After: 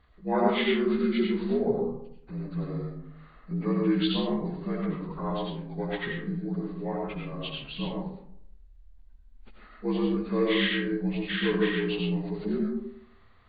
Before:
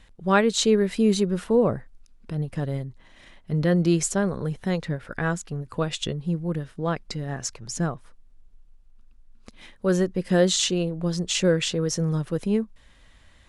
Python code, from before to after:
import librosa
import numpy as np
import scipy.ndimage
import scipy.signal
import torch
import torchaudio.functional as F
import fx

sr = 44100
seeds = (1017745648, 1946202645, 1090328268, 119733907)

y = fx.partial_stretch(x, sr, pct=77)
y = fx.rev_freeverb(y, sr, rt60_s=0.7, hf_ratio=0.4, predelay_ms=50, drr_db=-1.5)
y = y * librosa.db_to_amplitude(-6.5)